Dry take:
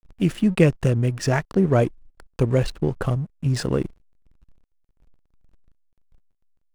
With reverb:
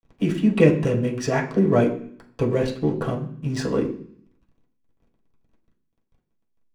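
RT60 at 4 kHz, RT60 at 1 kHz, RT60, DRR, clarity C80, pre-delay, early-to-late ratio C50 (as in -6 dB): 0.65 s, 0.55 s, 0.55 s, -3.5 dB, 13.5 dB, 3 ms, 9.5 dB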